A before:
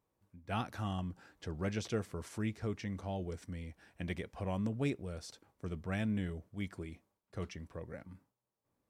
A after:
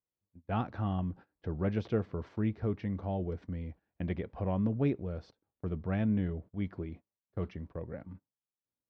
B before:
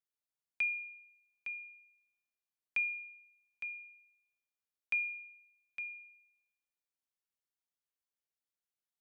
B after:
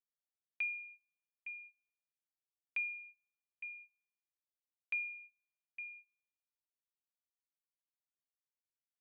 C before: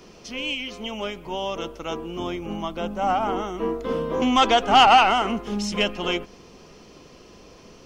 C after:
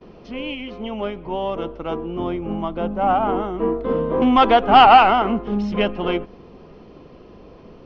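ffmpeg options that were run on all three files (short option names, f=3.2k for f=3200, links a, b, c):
-filter_complex "[0:a]aemphasis=mode=reproduction:type=cd,agate=range=-22dB:threshold=-52dB:ratio=16:detection=peak,asplit=2[a][b];[b]adynamicsmooth=sensitivity=0.5:basefreq=1.5k,volume=2dB[c];[a][c]amix=inputs=2:normalize=0,lowpass=f=4.4k:w=0.5412,lowpass=f=4.4k:w=1.3066,volume=-2dB"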